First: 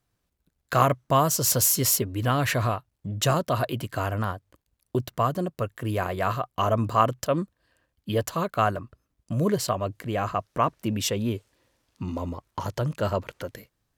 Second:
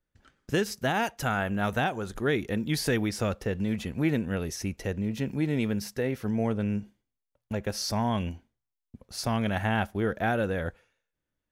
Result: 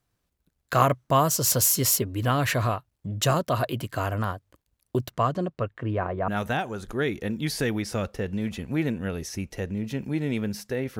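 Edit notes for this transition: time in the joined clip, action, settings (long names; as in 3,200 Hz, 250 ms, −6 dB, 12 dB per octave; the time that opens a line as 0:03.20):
first
0:05.11–0:06.28: low-pass filter 8,900 Hz → 1,000 Hz
0:06.28: continue with second from 0:01.55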